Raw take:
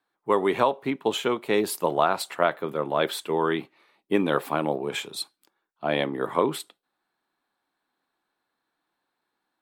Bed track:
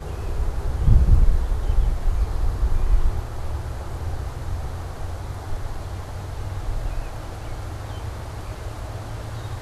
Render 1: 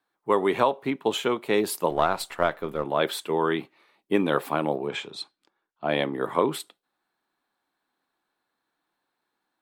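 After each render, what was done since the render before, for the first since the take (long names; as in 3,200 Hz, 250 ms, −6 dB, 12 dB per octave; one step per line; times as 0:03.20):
0:01.90–0:02.85: gain on one half-wave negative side −3 dB
0:04.87–0:05.89: high-frequency loss of the air 95 metres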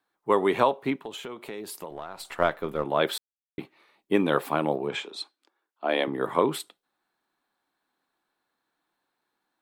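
0:01.04–0:02.25: downward compressor 4 to 1, threshold −36 dBFS
0:03.18–0:03.58: silence
0:05.03–0:06.08: high-pass filter 260 Hz 24 dB per octave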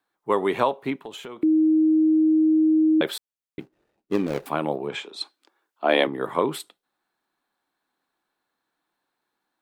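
0:01.43–0:03.01: beep over 314 Hz −15 dBFS
0:03.60–0:04.46: running median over 41 samples
0:05.21–0:06.07: clip gain +6 dB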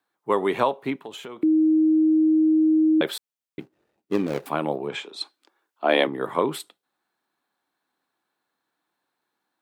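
high-pass filter 72 Hz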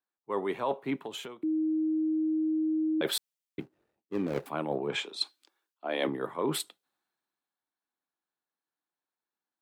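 reversed playback
downward compressor 10 to 1, threshold −27 dBFS, peak gain reduction 13 dB
reversed playback
multiband upward and downward expander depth 40%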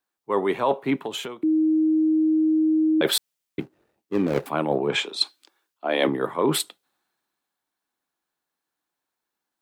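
level +8.5 dB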